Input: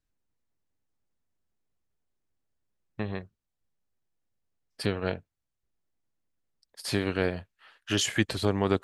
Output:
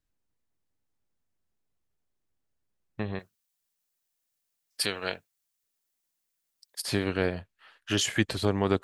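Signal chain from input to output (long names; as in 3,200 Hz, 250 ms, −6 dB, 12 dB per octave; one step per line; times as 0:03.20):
0:03.19–0:06.82: spectral tilt +4 dB per octave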